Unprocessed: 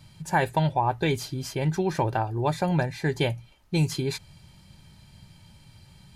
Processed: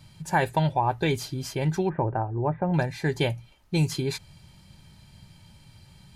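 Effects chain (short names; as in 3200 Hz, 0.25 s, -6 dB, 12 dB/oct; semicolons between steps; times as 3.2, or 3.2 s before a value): 1.89–2.74 Gaussian blur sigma 5.6 samples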